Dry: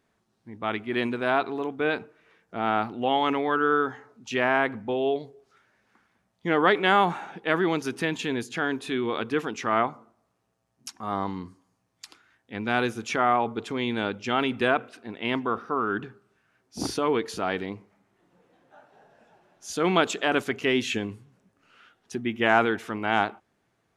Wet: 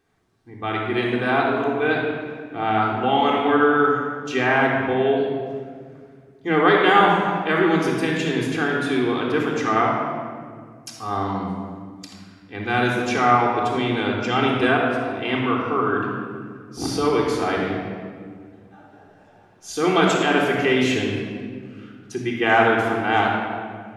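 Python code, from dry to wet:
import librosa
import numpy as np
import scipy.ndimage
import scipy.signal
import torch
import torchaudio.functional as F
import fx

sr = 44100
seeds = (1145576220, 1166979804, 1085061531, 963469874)

y = fx.room_shoebox(x, sr, seeds[0], volume_m3=3300.0, walls='mixed', distance_m=3.7)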